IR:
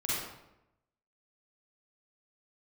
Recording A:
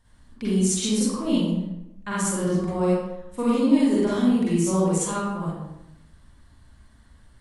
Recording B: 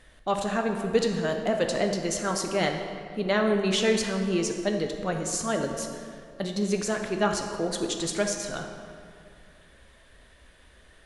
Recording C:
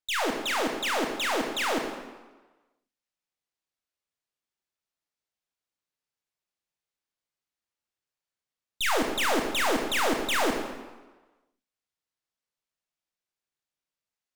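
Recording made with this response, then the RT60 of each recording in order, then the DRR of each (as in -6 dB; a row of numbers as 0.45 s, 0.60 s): A; 0.90 s, 2.3 s, 1.3 s; -8.5 dB, 3.0 dB, 1.5 dB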